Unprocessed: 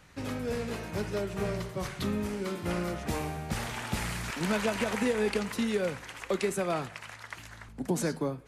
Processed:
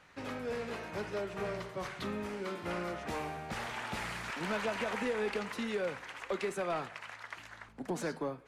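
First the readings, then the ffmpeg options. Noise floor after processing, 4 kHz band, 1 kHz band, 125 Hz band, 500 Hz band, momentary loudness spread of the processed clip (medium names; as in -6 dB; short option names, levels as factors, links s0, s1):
-54 dBFS, -5.0 dB, -2.0 dB, -10.5 dB, -4.5 dB, 10 LU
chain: -filter_complex "[0:a]asplit=2[s0][s1];[s1]highpass=f=720:p=1,volume=5.62,asoftclip=type=tanh:threshold=0.168[s2];[s0][s2]amix=inputs=2:normalize=0,lowpass=f=2100:p=1,volume=0.501,volume=0.398"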